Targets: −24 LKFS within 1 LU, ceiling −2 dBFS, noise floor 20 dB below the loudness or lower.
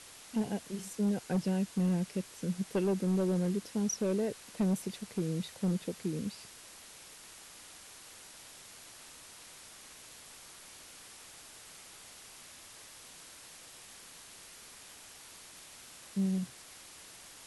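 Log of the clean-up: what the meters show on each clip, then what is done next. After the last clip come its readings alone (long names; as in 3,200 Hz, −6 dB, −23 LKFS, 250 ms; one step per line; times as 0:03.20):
share of clipped samples 0.7%; peaks flattened at −25.0 dBFS; background noise floor −53 dBFS; target noise floor −54 dBFS; integrated loudness −34.0 LKFS; sample peak −25.0 dBFS; target loudness −24.0 LKFS
→ clipped peaks rebuilt −25 dBFS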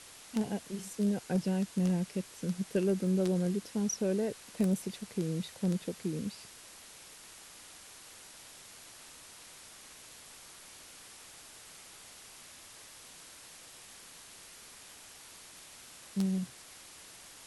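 share of clipped samples 0.0%; background noise floor −53 dBFS; target noise floor −54 dBFS
→ noise reduction from a noise print 6 dB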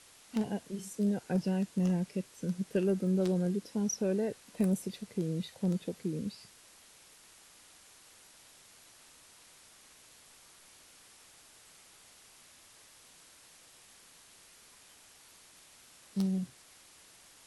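background noise floor −59 dBFS; integrated loudness −33.5 LKFS; sample peak −16.5 dBFS; target loudness −24.0 LKFS
→ level +9.5 dB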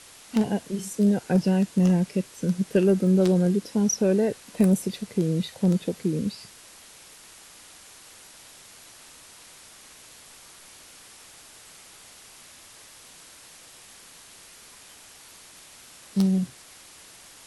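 integrated loudness −24.0 LKFS; sample peak −7.0 dBFS; background noise floor −49 dBFS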